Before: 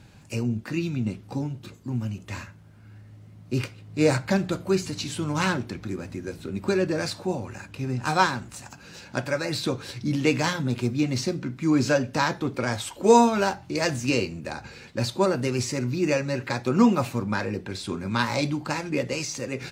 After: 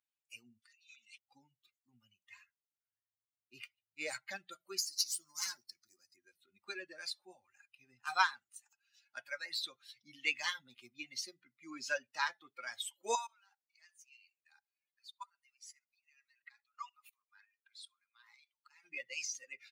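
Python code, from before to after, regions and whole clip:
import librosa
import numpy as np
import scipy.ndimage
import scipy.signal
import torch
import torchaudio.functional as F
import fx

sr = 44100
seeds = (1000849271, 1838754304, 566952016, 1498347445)

y = fx.chain(x, sr, fx.weighting(curve='ITU-R 468'),
    fx.over_compress(threshold_db=-43.0, ratio=-1.0), at=(0.62, 1.18))
y = fx.chain(y, sr, fx.law_mismatch(coded='mu'),
    fx.high_shelf_res(hz=4000.0, db=7.0, q=3.0),
    fx.tube_stage(drive_db=16.0, bias=0.75), at=(4.78, 6.16))
y = fx.chain(y, sr, fx.level_steps(step_db=19),
    fx.highpass(hz=880.0, slope=24),
    fx.echo_feedback(ms=67, feedback_pct=43, wet_db=-18.5), at=(13.15, 18.84))
y = fx.bin_expand(y, sr, power=2.0)
y = scipy.signal.sosfilt(scipy.signal.butter(2, 1300.0, 'highpass', fs=sr, output='sos'), y)
y = fx.notch(y, sr, hz=7600.0, q=13.0)
y = y * librosa.db_to_amplitude(-2.0)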